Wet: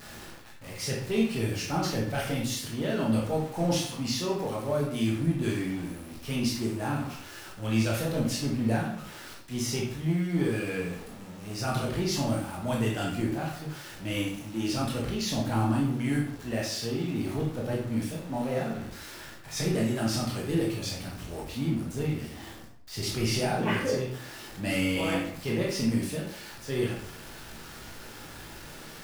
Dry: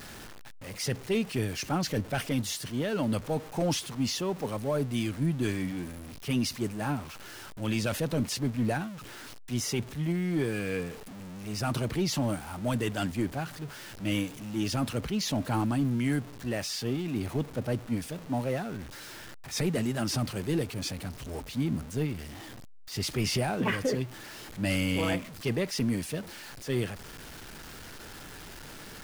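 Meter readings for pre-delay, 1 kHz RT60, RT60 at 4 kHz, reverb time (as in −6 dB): 16 ms, 0.60 s, 0.50 s, 0.65 s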